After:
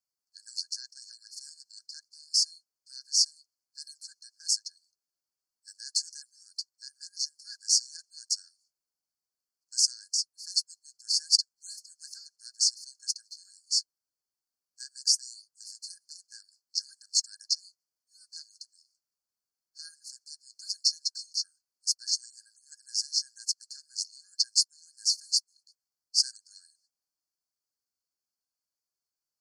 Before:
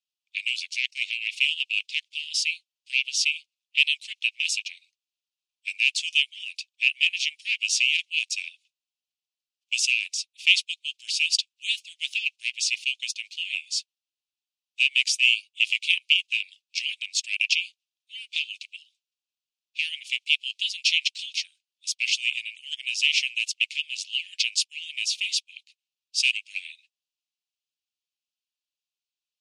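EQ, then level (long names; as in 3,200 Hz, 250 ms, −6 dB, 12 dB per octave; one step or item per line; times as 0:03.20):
dynamic equaliser 1,600 Hz, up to +6 dB, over −51 dBFS, Q 7.3
linear-phase brick-wall band-stop 1,700–4,200 Hz
+2.0 dB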